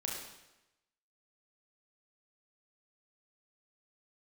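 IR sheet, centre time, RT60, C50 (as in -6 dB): 58 ms, 0.95 s, 1.5 dB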